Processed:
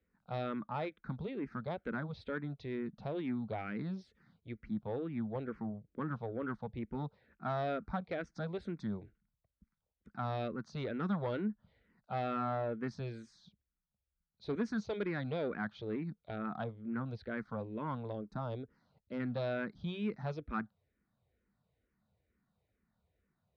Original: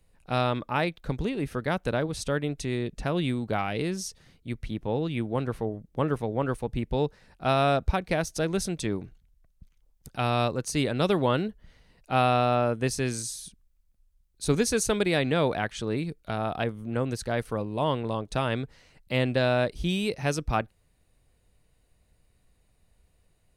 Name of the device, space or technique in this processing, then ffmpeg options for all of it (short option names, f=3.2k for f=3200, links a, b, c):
barber-pole phaser into a guitar amplifier: -filter_complex "[0:a]asplit=2[a][b];[b]afreqshift=-2.2[c];[a][c]amix=inputs=2:normalize=1,asoftclip=type=tanh:threshold=-22.5dB,highpass=77,equalizer=f=210:t=q:w=4:g=8,equalizer=f=1.4k:t=q:w=4:g=5,equalizer=f=2.8k:t=q:w=4:g=-10,lowpass=f=3.6k:w=0.5412,lowpass=f=3.6k:w=1.3066,asettb=1/sr,asplit=3[d][e][f];[d]atrim=end=18.124[g];[e]atrim=start=18.12:end=19.2,asetpts=PTS-STARTPTS,afade=t=in:d=0.004:c=qsin,afade=t=out:st=1.076:d=0.004:c=qsin,equalizer=f=2.1k:t=o:w=1.2:g=-11[h];[f]atrim=start=19.196[i];[g][h]acrossfade=d=0.004:c1=hsin:c2=qsin[j];[j][i]acrossfade=d=0.004:c1=qsin:c2=hsin,volume=-7.5dB"